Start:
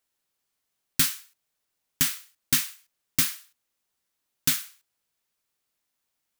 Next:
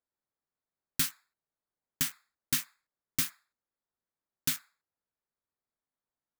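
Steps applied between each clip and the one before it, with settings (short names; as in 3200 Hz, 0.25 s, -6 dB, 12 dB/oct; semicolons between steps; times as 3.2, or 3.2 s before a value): Wiener smoothing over 15 samples; gain -6.5 dB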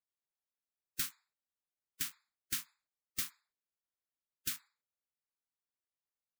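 bin magnitudes rounded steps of 30 dB; gain -7 dB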